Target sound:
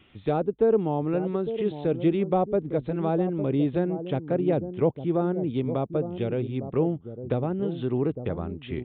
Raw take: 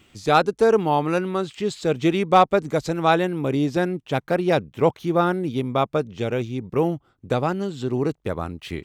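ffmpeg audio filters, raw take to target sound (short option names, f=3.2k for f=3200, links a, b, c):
-filter_complex "[0:a]acrossover=split=610[a][b];[a]aecho=1:1:856:0.335[c];[b]acompressor=threshold=-39dB:ratio=6[d];[c][d]amix=inputs=2:normalize=0,aresample=8000,aresample=44100,volume=-2dB"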